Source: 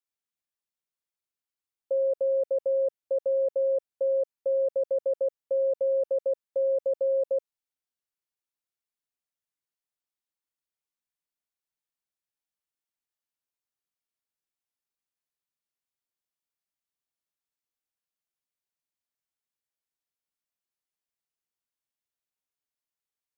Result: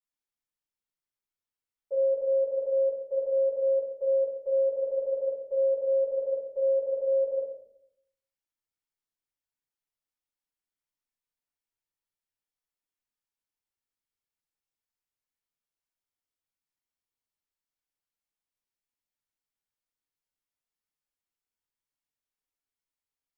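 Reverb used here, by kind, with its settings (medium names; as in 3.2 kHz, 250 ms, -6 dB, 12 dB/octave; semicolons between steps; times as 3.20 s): simulated room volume 120 m³, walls mixed, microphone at 4.4 m; trim -16 dB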